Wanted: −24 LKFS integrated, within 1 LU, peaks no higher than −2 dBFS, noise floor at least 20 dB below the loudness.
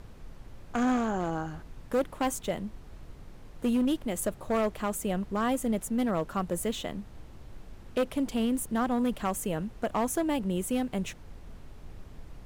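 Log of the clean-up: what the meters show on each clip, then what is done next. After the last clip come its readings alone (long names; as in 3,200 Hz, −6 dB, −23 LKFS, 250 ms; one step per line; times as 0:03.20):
share of clipped samples 1.6%; peaks flattened at −21.5 dBFS; background noise floor −49 dBFS; target noise floor −51 dBFS; integrated loudness −30.5 LKFS; sample peak −21.5 dBFS; target loudness −24.0 LKFS
→ clipped peaks rebuilt −21.5 dBFS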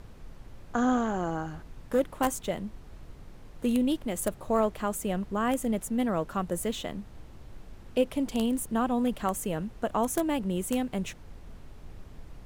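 share of clipped samples 0.0%; background noise floor −49 dBFS; target noise floor −50 dBFS
→ noise reduction from a noise print 6 dB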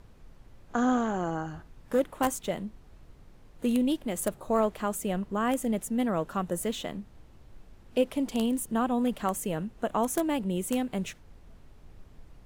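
background noise floor −54 dBFS; integrated loudness −30.0 LKFS; sample peak −12.5 dBFS; target loudness −24.0 LKFS
→ level +6 dB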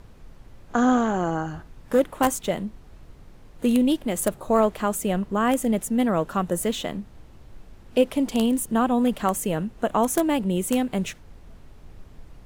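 integrated loudness −24.0 LKFS; sample peak −6.5 dBFS; background noise floor −48 dBFS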